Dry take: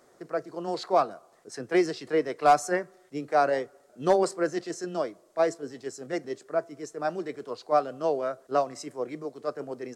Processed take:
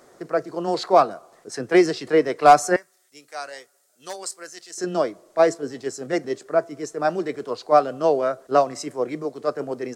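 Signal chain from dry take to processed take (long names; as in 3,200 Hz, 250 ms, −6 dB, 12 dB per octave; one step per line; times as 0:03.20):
0:02.76–0:04.78: first-order pre-emphasis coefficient 0.97
level +7.5 dB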